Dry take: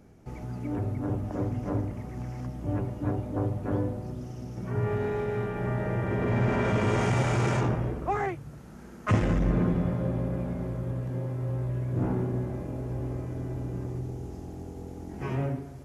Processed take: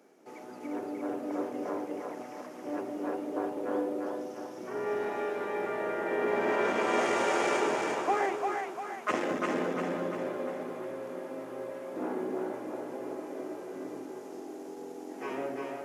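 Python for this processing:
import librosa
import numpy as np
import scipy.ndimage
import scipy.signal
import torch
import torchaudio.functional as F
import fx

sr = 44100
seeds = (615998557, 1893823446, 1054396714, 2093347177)

y = scipy.signal.sosfilt(scipy.signal.butter(4, 310.0, 'highpass', fs=sr, output='sos'), x)
y = fx.echo_split(y, sr, split_hz=580.0, low_ms=204, high_ms=348, feedback_pct=52, wet_db=-3.0)
y = fx.quant_float(y, sr, bits=6)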